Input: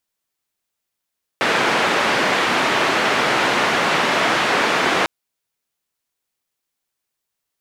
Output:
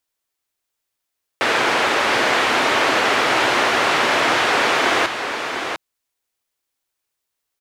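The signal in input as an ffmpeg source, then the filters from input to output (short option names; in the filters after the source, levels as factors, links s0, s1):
-f lavfi -i "anoisesrc=c=white:d=3.65:r=44100:seed=1,highpass=f=210,lowpass=f=2000,volume=-2.7dB"
-af "equalizer=f=180:w=2.7:g=-10.5,aecho=1:1:700:0.447"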